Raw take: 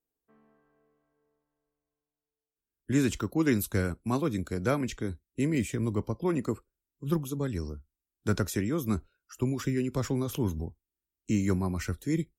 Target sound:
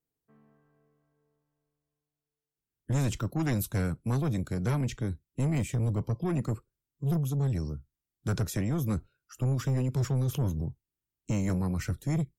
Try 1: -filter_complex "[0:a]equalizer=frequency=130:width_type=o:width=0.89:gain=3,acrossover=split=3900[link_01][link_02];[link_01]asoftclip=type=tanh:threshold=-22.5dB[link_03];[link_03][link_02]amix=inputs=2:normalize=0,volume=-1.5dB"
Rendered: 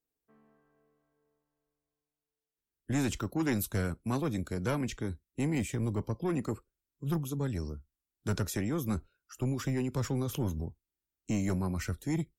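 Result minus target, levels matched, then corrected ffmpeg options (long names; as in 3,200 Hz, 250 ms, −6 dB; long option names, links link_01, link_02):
125 Hz band −3.0 dB
-filter_complex "[0:a]equalizer=frequency=130:width_type=o:width=0.89:gain=14,acrossover=split=3900[link_01][link_02];[link_01]asoftclip=type=tanh:threshold=-22.5dB[link_03];[link_03][link_02]amix=inputs=2:normalize=0,volume=-1.5dB"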